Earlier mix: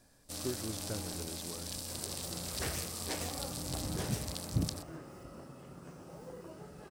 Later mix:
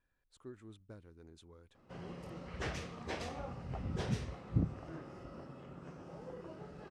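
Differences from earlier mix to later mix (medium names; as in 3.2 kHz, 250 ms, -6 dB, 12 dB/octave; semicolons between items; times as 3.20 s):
speech -11.5 dB; first sound: muted; second sound: add low-pass 4.5 kHz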